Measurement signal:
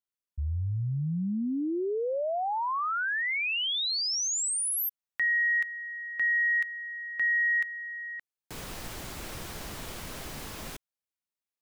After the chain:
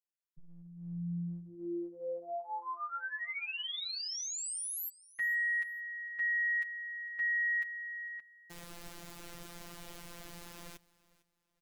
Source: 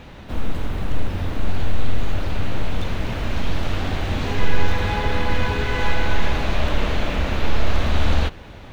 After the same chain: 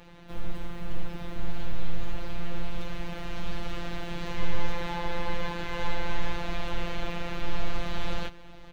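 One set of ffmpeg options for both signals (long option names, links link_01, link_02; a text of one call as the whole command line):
ffmpeg -i in.wav -af "aecho=1:1:454|908:0.0794|0.0222,afftfilt=real='hypot(re,im)*cos(PI*b)':imag='0':win_size=1024:overlap=0.75,volume=-6dB" out.wav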